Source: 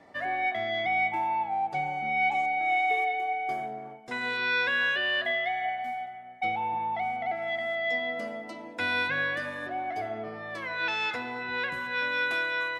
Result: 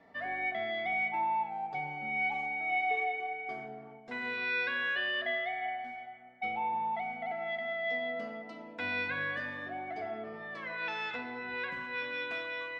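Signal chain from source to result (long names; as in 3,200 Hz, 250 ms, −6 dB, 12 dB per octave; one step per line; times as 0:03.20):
low-pass filter 4,400 Hz 12 dB per octave
rectangular room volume 2,500 cubic metres, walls furnished, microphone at 1.6 metres
level −6.5 dB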